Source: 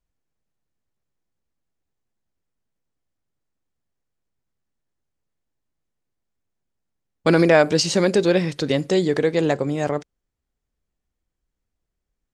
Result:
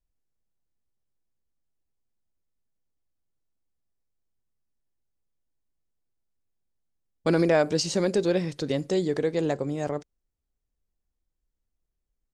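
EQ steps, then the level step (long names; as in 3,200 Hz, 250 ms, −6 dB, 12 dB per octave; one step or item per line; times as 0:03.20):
bass and treble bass −3 dB, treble +11 dB
spectral tilt −3 dB per octave
low-shelf EQ 320 Hz −5 dB
−7.5 dB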